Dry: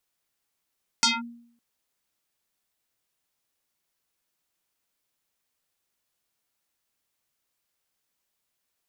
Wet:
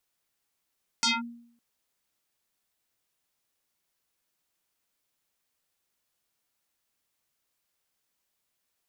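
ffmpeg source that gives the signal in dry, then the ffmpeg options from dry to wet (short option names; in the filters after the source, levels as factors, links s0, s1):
-f lavfi -i "aevalsrc='0.178*pow(10,-3*t/0.64)*sin(2*PI*236*t+6.1*clip(1-t/0.19,0,1)*sin(2*PI*4.88*236*t))':d=0.56:s=44100"
-af "alimiter=limit=0.0841:level=0:latency=1"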